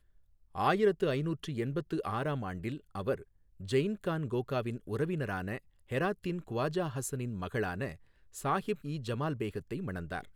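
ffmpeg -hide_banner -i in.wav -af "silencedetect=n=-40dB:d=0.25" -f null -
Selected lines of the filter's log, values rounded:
silence_start: 0.00
silence_end: 0.55 | silence_duration: 0.55
silence_start: 3.22
silence_end: 3.60 | silence_duration: 0.39
silence_start: 5.58
silence_end: 5.91 | silence_duration: 0.33
silence_start: 7.93
silence_end: 8.36 | silence_duration: 0.43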